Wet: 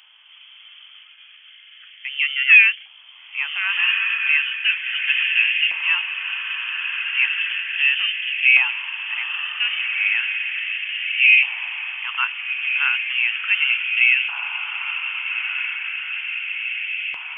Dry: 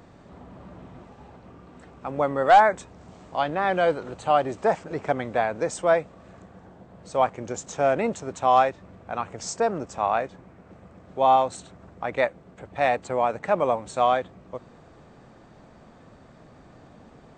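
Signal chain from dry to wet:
feedback delay with all-pass diffusion 1,531 ms, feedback 64%, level −3.5 dB
voice inversion scrambler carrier 3,300 Hz
auto-filter high-pass saw up 0.35 Hz 950–2,200 Hz
level −2.5 dB

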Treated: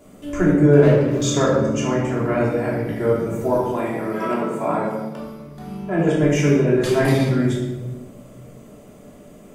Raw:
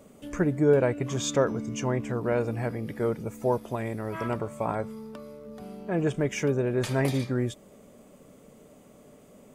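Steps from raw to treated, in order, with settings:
0:00.79–0:01.22: running median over 41 samples
0:03.54–0:05.19: Butterworth high-pass 150 Hz 36 dB per octave
rectangular room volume 640 cubic metres, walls mixed, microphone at 3.1 metres
level +1 dB

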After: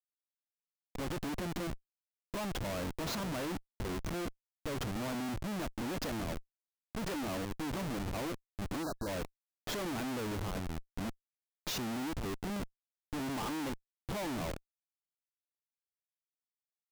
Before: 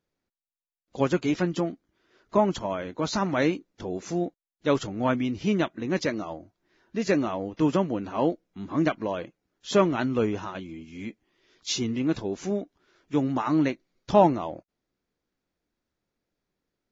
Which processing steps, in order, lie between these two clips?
comparator with hysteresis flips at −34 dBFS
time-frequency box erased 0:08.83–0:09.07, 1,700–3,800 Hz
level −8.5 dB

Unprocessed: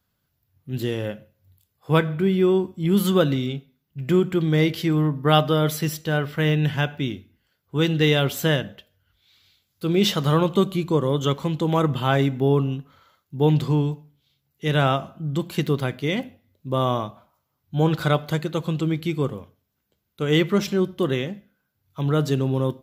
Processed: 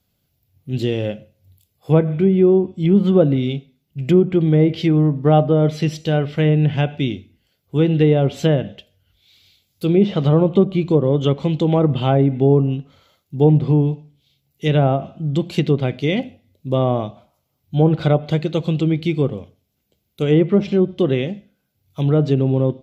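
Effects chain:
treble cut that deepens with the level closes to 1,100 Hz, closed at −15 dBFS
flat-topped bell 1,300 Hz −9 dB 1.2 octaves
level +5.5 dB

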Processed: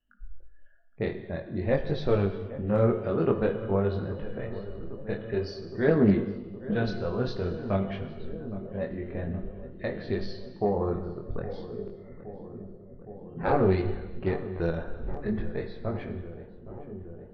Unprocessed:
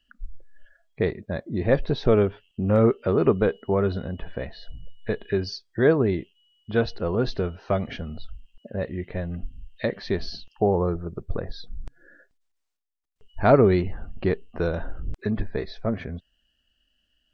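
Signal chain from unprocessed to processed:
low-pass that shuts in the quiet parts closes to 1,300 Hz, open at −17 dBFS
0:05.88–0:06.74: parametric band 220 Hz +14 dB 0.71 octaves
0:11.47–0:13.59: ring modulation 510 Hz → 140 Hz
chorus effect 0.5 Hz, delay 20 ms, depth 5.2 ms
feedback echo with a low-pass in the loop 816 ms, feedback 84%, low-pass 1,300 Hz, level −15 dB
reverb whose tail is shaped and stops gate 470 ms falling, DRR 8 dB
highs frequency-modulated by the lows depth 0.2 ms
level −2.5 dB

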